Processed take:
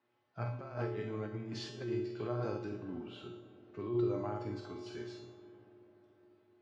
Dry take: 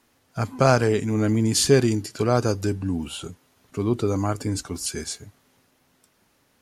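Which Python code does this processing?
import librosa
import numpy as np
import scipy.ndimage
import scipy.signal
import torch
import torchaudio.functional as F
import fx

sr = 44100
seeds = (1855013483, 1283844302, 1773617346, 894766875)

y = scipy.signal.sosfilt(scipy.signal.butter(2, 95.0, 'highpass', fs=sr, output='sos'), x)
y = fx.high_shelf(y, sr, hz=2500.0, db=-11.5)
y = fx.doubler(y, sr, ms=48.0, db=-6.0)
y = fx.room_flutter(y, sr, wall_m=11.5, rt60_s=0.36)
y = fx.over_compress(y, sr, threshold_db=-22.0, ratio=-0.5)
y = scipy.signal.sosfilt(scipy.signal.butter(4, 4500.0, 'lowpass', fs=sr, output='sos'), y)
y = fx.low_shelf(y, sr, hz=190.0, db=-10.5)
y = fx.comb_fb(y, sr, f0_hz=120.0, decay_s=0.63, harmonics='odd', damping=0.0, mix_pct=90)
y = fx.rev_freeverb(y, sr, rt60_s=4.9, hf_ratio=0.35, predelay_ms=10, drr_db=13.0)
y = y * librosa.db_to_amplitude(2.5)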